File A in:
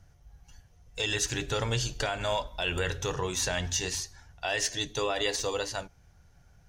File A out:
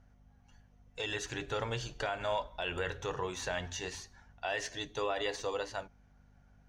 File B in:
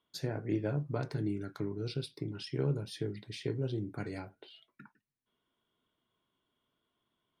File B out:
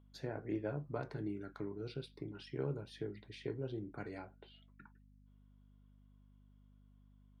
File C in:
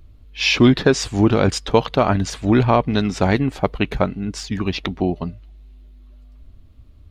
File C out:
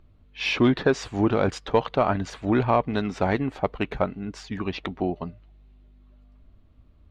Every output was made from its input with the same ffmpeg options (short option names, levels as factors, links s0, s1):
-filter_complex "[0:a]aeval=exprs='val(0)+0.00224*(sin(2*PI*50*n/s)+sin(2*PI*2*50*n/s)/2+sin(2*PI*3*50*n/s)/3+sin(2*PI*4*50*n/s)/4+sin(2*PI*5*50*n/s)/5)':c=same,asplit=2[s0][s1];[s1]highpass=f=720:p=1,volume=2.82,asoftclip=type=tanh:threshold=0.891[s2];[s0][s2]amix=inputs=2:normalize=0,lowpass=f=1200:p=1,volume=0.501,bandreject=f=5100:w=27,volume=0.596"